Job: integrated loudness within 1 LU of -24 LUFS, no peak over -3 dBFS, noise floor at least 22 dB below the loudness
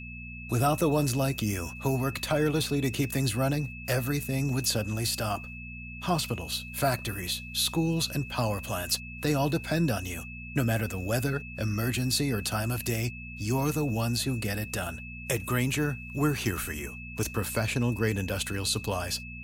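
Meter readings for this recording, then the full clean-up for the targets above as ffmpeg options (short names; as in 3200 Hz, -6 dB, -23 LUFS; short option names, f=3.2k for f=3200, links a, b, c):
hum 60 Hz; harmonics up to 240 Hz; hum level -42 dBFS; steady tone 2600 Hz; tone level -42 dBFS; loudness -29.0 LUFS; peak -13.5 dBFS; loudness target -24.0 LUFS
-> -af "bandreject=f=60:t=h:w=4,bandreject=f=120:t=h:w=4,bandreject=f=180:t=h:w=4,bandreject=f=240:t=h:w=4"
-af "bandreject=f=2.6k:w=30"
-af "volume=5dB"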